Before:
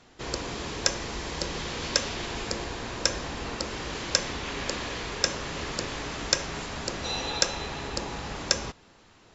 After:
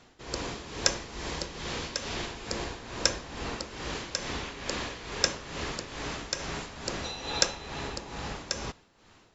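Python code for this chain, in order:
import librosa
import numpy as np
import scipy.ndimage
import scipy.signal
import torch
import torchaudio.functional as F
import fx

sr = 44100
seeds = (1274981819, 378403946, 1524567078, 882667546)

y = x * (1.0 - 0.65 / 2.0 + 0.65 / 2.0 * np.cos(2.0 * np.pi * 2.3 * (np.arange(len(x)) / sr)))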